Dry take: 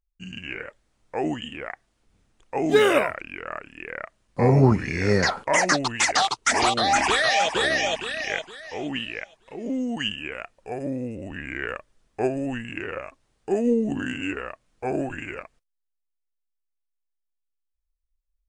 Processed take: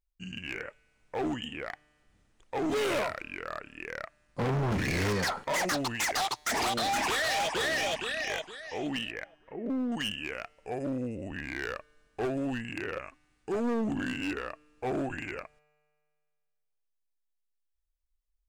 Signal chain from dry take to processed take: 4.71–5.13 sample leveller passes 2; 9.11–9.92 Chebyshev low-pass 1900 Hz, order 3; 12.98–13.54 bell 600 Hz -7 dB 0.97 oct; overloaded stage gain 24 dB; resonator 150 Hz, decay 2 s, mix 30%

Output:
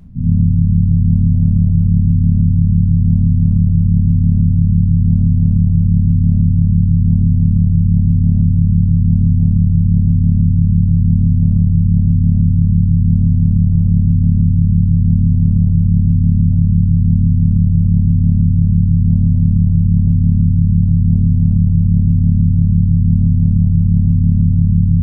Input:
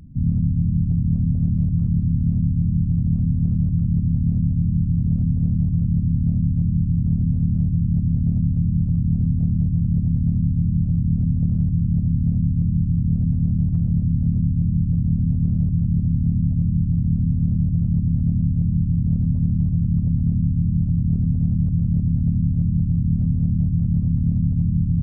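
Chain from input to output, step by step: shoebox room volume 210 m³, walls mixed, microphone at 1.2 m

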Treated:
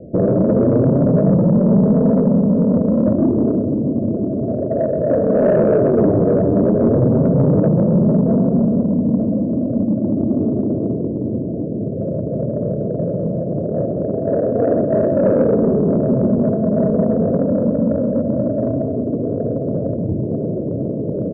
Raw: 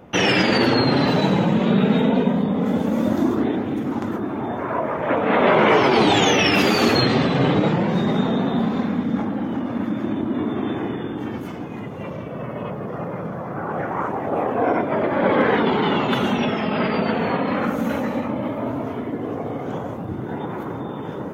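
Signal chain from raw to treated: Chebyshev low-pass 660 Hz, order 8; dynamic EQ 340 Hz, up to -6 dB, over -33 dBFS, Q 1.7; in parallel at +1.5 dB: limiter -16 dBFS, peak gain reduction 7 dB; on the sum: soft clip -9.5 dBFS, distortion -20 dB; feedback echo 0.133 s, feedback 57%, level -16 dB; gain +3.5 dB

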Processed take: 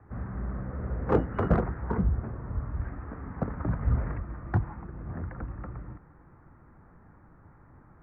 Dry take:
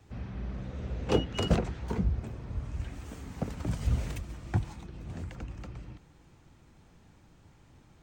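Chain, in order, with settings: steep low-pass 1900 Hz 48 dB/oct; bell 1200 Hz +6 dB 0.69 oct; in parallel at -7 dB: hard clip -25 dBFS, distortion -10 dB

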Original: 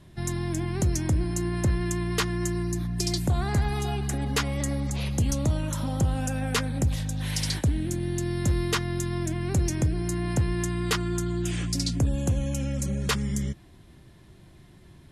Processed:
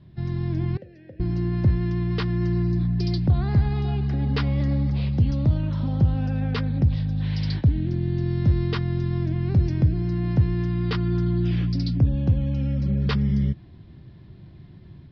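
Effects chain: steep low-pass 5100 Hz 72 dB/oct; bell 120 Hz +12 dB 2.7 oct; AGC gain up to 4.5 dB; 0.77–1.2 vowel filter e; gain -7.5 dB

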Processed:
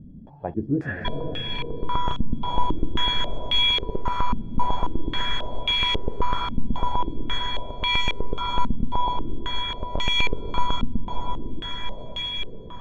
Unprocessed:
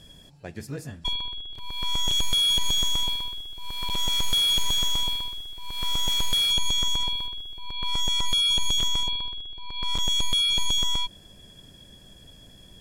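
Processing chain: diffused feedback echo 0.507 s, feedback 57%, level -3.5 dB; stepped low-pass 3.7 Hz 230–2400 Hz; gain +5.5 dB

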